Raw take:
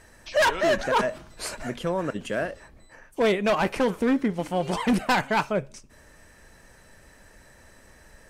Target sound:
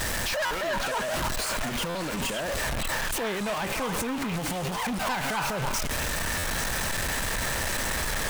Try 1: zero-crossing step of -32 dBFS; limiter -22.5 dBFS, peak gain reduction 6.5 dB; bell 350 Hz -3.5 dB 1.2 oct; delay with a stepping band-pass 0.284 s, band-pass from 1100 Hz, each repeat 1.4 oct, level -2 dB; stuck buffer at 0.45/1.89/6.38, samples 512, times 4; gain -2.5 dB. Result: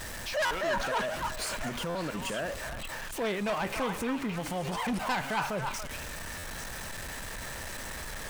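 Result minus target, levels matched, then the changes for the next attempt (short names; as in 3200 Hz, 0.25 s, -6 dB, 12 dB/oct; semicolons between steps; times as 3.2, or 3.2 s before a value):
zero-crossing step: distortion -9 dB
change: zero-crossing step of -20.5 dBFS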